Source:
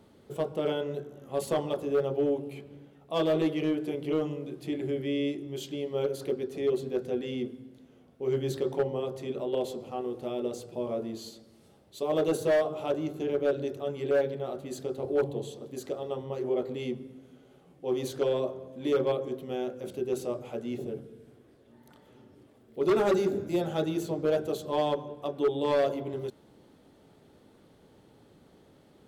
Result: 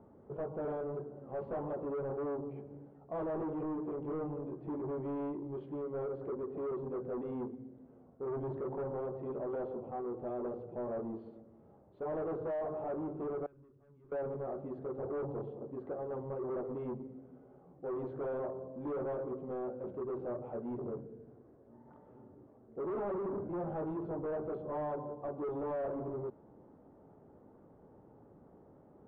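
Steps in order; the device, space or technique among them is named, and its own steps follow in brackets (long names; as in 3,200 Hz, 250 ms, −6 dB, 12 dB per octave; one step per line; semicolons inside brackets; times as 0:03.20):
overdriven synthesiser ladder filter (soft clipping −34 dBFS, distortion −6 dB; transistor ladder low-pass 1,300 Hz, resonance 25%)
0:13.46–0:14.12: guitar amp tone stack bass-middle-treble 6-0-2
level +4.5 dB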